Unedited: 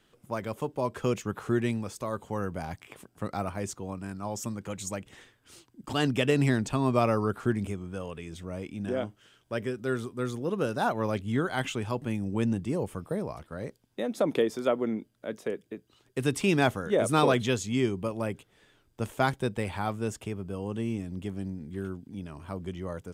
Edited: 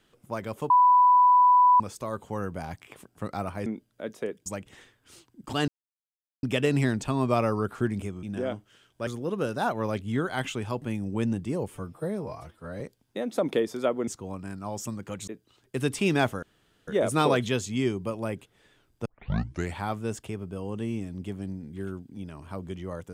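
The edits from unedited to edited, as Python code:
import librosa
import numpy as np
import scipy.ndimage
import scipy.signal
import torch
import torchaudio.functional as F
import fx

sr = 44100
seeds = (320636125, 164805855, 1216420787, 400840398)

y = fx.edit(x, sr, fx.bleep(start_s=0.7, length_s=1.1, hz=992.0, db=-14.5),
    fx.swap(start_s=3.66, length_s=1.2, other_s=14.9, other_length_s=0.8),
    fx.insert_silence(at_s=6.08, length_s=0.75),
    fx.cut(start_s=7.88, length_s=0.86),
    fx.cut(start_s=9.58, length_s=0.69),
    fx.stretch_span(start_s=12.88, length_s=0.75, factor=1.5),
    fx.insert_room_tone(at_s=16.85, length_s=0.45),
    fx.tape_start(start_s=19.03, length_s=0.71), tone=tone)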